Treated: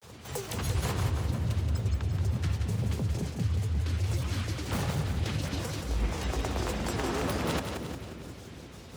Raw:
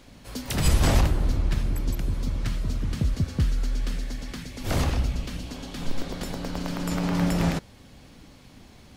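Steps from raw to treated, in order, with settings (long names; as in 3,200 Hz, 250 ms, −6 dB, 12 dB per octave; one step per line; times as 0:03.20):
parametric band 160 Hz −13 dB 0.55 octaves
reversed playback
downward compressor 6 to 1, threshold −30 dBFS, peak gain reduction 14.5 dB
reversed playback
granular cloud, spray 23 ms, pitch spread up and down by 12 semitones
frequency shifter +49 Hz
on a send: echo with a time of its own for lows and highs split 420 Hz, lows 358 ms, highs 177 ms, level −6 dB
on the sum: level +3.5 dB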